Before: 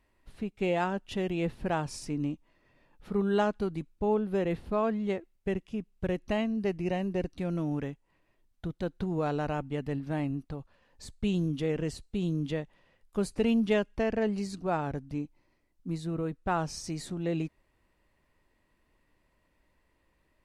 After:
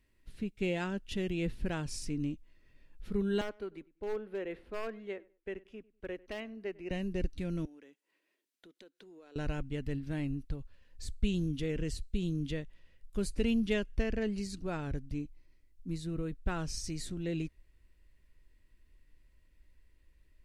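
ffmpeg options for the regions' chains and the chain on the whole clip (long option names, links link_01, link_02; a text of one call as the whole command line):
ffmpeg -i in.wav -filter_complex "[0:a]asettb=1/sr,asplit=3[link_01][link_02][link_03];[link_01]atrim=end=3.414[link_04];[link_02]atrim=start=3.41:end=6.91,asetpts=PTS-STARTPTS,afade=type=in:duration=0.004:curve=qsin,afade=type=out:start_time=3.496:duration=0.004:curve=qsin,acrossover=split=320 2600:gain=0.0708 1 0.178[link_05][link_06][link_07];[link_05][link_06][link_07]amix=inputs=3:normalize=0,asoftclip=type=hard:threshold=-24dB,asplit=2[link_08][link_09];[link_09]adelay=98,lowpass=frequency=1900:poles=1,volume=-21.5dB,asplit=2[link_10][link_11];[link_11]adelay=98,lowpass=frequency=1900:poles=1,volume=0.27[link_12];[link_08][link_10][link_12]amix=inputs=3:normalize=0,atrim=end_sample=154350[link_13];[link_03]atrim=start=6.906[link_14];[link_04][link_13]acrossfade=duration=0.004:curve1=hsin:curve2=qsin[link_15];[link_15][link_14]acrossfade=duration=0.004:curve1=qsin:curve2=hsin,asettb=1/sr,asplit=3[link_16][link_17][link_18];[link_16]atrim=end=7.654[link_19];[link_17]atrim=start=7.65:end=9.36,asetpts=PTS-STARTPTS,afade=type=in:duration=0.004:curve=qsin,afade=type=out:start_time=1.706:duration=0.004:curve=qsin,highpass=frequency=300:width=0.5412,highpass=frequency=300:width=1.3066,acompressor=threshold=-52dB:ratio=3:attack=3.2:release=140:knee=1:detection=peak[link_20];[link_18]atrim=start=9.356[link_21];[link_19][link_20]acrossfade=duration=0.004:curve1=hsin:curve2=qsin[link_22];[link_22][link_21]acrossfade=duration=0.004:curve1=qsin:curve2=hsin,equalizer=frequency=810:width=1.1:gain=-13.5,bandreject=frequency=1200:width=15,asubboost=boost=4.5:cutoff=69" out.wav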